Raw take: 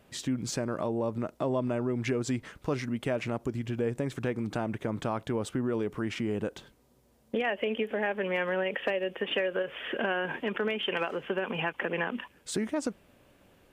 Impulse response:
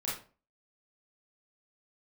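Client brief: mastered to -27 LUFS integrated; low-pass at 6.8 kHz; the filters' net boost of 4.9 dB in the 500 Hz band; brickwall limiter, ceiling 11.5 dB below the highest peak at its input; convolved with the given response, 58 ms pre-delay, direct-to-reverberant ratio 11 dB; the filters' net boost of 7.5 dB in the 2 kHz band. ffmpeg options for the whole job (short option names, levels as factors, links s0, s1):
-filter_complex "[0:a]lowpass=6800,equalizer=f=500:t=o:g=5.5,equalizer=f=2000:t=o:g=9,alimiter=limit=0.0794:level=0:latency=1,asplit=2[s0][s1];[1:a]atrim=start_sample=2205,adelay=58[s2];[s1][s2]afir=irnorm=-1:irlink=0,volume=0.178[s3];[s0][s3]amix=inputs=2:normalize=0,volume=1.68"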